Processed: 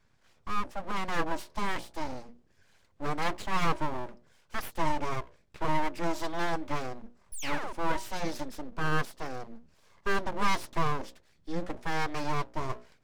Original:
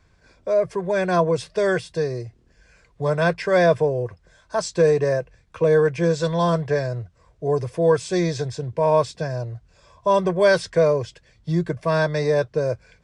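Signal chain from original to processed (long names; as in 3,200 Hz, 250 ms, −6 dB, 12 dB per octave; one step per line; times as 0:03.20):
mains-hum notches 60/120/180/240/300/360/420/480/540 Hz
sound drawn into the spectrogram fall, 0:07.32–0:07.73, 440–5,600 Hz −27 dBFS
full-wave rectification
level −7.5 dB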